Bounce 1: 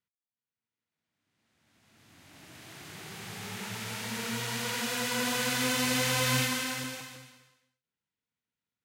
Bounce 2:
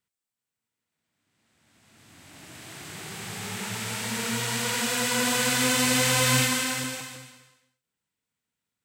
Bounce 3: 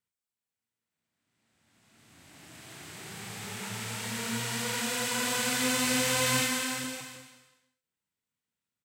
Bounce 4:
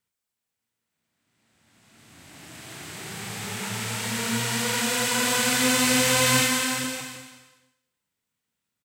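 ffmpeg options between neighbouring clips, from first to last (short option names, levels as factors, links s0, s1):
-af "equalizer=f=8000:t=o:w=0.23:g=7.5,volume=1.78"
-filter_complex "[0:a]asplit=2[s0][s1];[s1]adelay=35,volume=0.422[s2];[s0][s2]amix=inputs=2:normalize=0,volume=0.531"
-af "aecho=1:1:219|438:0.0841|0.0286,volume=2.11"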